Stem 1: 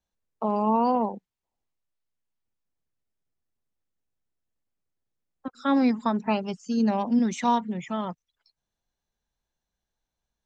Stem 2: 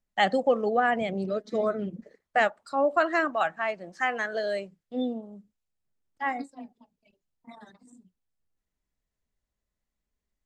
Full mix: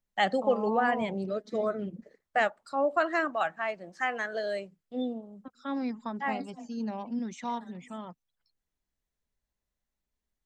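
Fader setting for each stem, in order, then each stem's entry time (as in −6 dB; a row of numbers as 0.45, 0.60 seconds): −11.0, −3.0 decibels; 0.00, 0.00 seconds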